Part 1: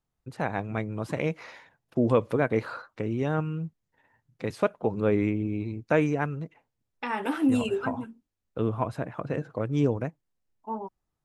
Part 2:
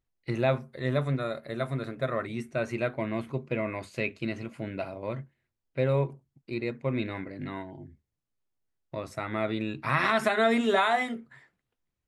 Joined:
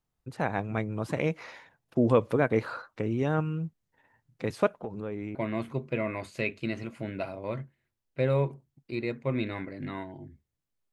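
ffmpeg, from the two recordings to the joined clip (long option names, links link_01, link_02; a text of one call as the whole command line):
ffmpeg -i cue0.wav -i cue1.wav -filter_complex "[0:a]asettb=1/sr,asplit=3[link_01][link_02][link_03];[link_01]atrim=end=4.714[link_04];[link_02]atrim=start=4.71:end=5.35,asetpts=PTS-STARTPTS,afade=type=in:duration=0.004:curve=qsin,afade=type=out:start_time=0.636:duration=0.004:curve=qsin,acompressor=threshold=-35dB:ratio=3:attack=3.2:release=140:knee=1:detection=peak[link_05];[link_03]atrim=start=5.346[link_06];[link_04][link_05]acrossfade=duration=0.004:curve1=hsin:curve2=qsin[link_07];[link_07][link_06]acrossfade=duration=0.004:curve1=qsin:curve2=hsin,apad=whole_dur=10.92,atrim=end=10.92,atrim=end=5.352[link_08];[1:a]atrim=start=2.938:end=8.51[link_09];[link_08][link_09]acrossfade=duration=0.004:curve1=hsin:curve2=hsin" out.wav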